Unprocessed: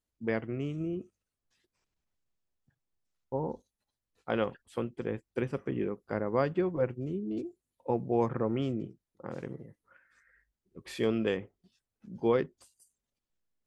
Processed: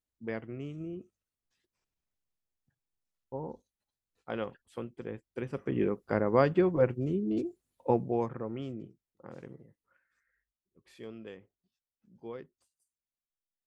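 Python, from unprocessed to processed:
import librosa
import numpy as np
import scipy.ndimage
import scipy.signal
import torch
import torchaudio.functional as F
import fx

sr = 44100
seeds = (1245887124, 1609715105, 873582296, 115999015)

y = fx.gain(x, sr, db=fx.line((5.39, -5.5), (5.83, 4.0), (7.91, 4.0), (8.35, -7.0), (9.49, -7.0), (10.8, -16.0)))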